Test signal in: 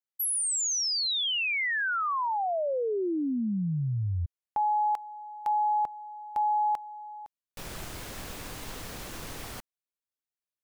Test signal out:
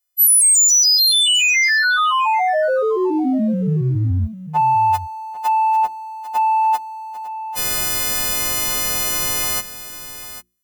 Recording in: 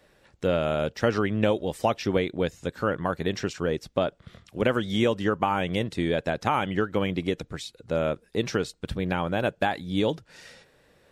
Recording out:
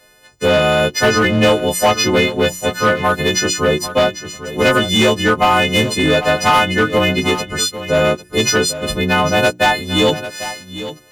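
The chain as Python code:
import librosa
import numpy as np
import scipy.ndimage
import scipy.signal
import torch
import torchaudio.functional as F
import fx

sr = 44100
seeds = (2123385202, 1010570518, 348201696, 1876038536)

p1 = fx.freq_snap(x, sr, grid_st=3)
p2 = fx.leveller(p1, sr, passes=1)
p3 = 10.0 ** (-16.5 / 20.0) * (np.abs((p2 / 10.0 ** (-16.5 / 20.0) + 3.0) % 4.0 - 2.0) - 1.0)
p4 = p2 + F.gain(torch.from_numpy(p3), -3.0).numpy()
p5 = fx.hum_notches(p4, sr, base_hz=60, count=6)
p6 = p5 + 10.0 ** (-13.0 / 20.0) * np.pad(p5, (int(797 * sr / 1000.0), 0))[:len(p5)]
y = F.gain(torch.from_numpy(p6), 3.5).numpy()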